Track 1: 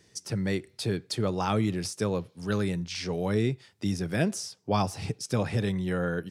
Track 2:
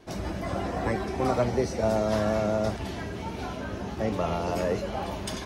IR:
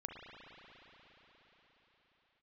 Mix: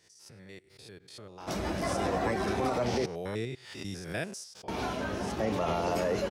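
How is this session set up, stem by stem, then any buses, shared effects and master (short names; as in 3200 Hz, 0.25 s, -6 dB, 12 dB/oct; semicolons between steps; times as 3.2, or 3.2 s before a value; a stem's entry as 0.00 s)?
1.57 s -13 dB -> 1.91 s -1.5 dB -> 4.23 s -1.5 dB -> 4.76 s -13.5 dB, 0.00 s, no send, stepped spectrum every 0.1 s; bell 220 Hz -7 dB 1.7 oct; backwards sustainer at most 80 dB/s
+2.5 dB, 1.40 s, muted 3.06–4.68, no send, dry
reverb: off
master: low shelf 160 Hz -8 dB; limiter -20.5 dBFS, peak gain reduction 11 dB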